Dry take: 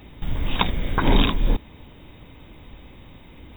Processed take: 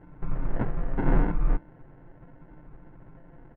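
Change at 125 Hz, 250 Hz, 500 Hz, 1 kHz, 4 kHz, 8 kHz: −4.0 dB, −5.5 dB, −5.5 dB, −10.0 dB, below −35 dB, can't be measured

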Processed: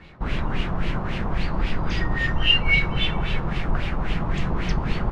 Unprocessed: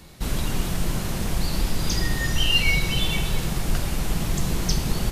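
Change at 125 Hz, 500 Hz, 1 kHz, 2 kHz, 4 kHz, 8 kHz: 0.0 dB, +1.0 dB, +4.0 dB, +3.0 dB, 0.0 dB, below −15 dB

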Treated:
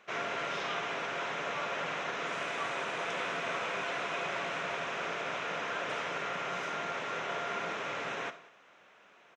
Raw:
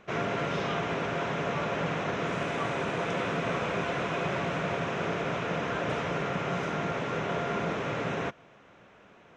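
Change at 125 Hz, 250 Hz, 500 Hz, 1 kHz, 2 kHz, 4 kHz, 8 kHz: −17.0, −13.0, −7.0, −3.0, −1.0, 0.0, 0.0 decibels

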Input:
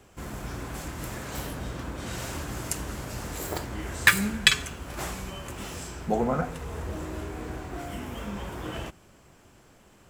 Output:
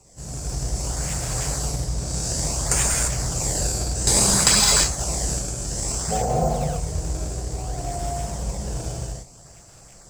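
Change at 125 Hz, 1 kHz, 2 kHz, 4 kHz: +9.5, +6.0, −4.5, +5.5 decibels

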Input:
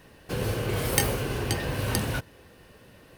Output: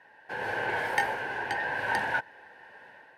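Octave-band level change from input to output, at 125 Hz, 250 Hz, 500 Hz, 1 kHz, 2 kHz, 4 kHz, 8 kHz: −20.0, −12.5, −5.0, +6.0, +6.5, −8.0, −18.0 decibels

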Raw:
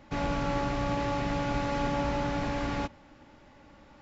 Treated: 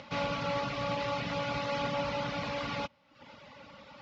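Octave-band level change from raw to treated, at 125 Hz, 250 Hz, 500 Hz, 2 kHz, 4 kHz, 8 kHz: −6.0 dB, −7.5 dB, −1.5 dB, −0.5 dB, +3.0 dB, can't be measured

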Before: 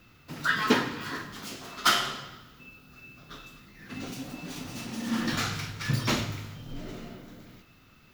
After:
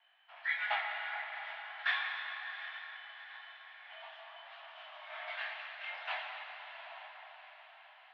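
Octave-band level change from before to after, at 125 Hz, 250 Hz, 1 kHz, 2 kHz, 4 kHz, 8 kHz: below −40 dB, below −40 dB, −9.0 dB, −4.0 dB, −12.0 dB, below −40 dB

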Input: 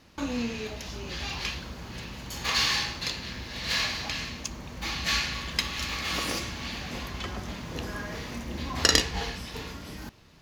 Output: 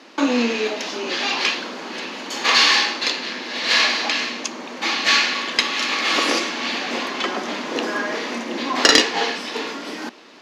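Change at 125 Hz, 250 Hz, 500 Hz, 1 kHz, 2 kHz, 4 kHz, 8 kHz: below −10 dB, +10.0 dB, +13.0 dB, +12.5 dB, +12.0 dB, +10.0 dB, +6.5 dB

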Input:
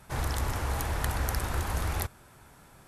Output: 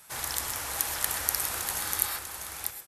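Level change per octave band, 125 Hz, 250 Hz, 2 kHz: −16.5, −9.5, +1.5 decibels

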